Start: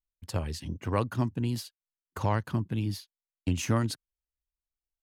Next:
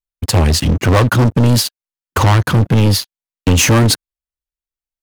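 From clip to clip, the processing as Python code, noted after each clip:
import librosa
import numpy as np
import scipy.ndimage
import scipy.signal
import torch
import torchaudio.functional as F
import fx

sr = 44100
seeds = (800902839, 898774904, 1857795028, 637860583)

y = fx.leveller(x, sr, passes=5)
y = F.gain(torch.from_numpy(y), 7.5).numpy()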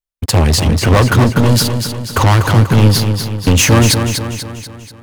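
y = fx.echo_feedback(x, sr, ms=243, feedback_pct=51, wet_db=-7.0)
y = F.gain(torch.from_numpy(y), 1.0).numpy()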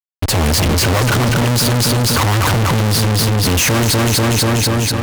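y = fx.diode_clip(x, sr, knee_db=-8.0)
y = fx.fuzz(y, sr, gain_db=39.0, gate_db=-43.0)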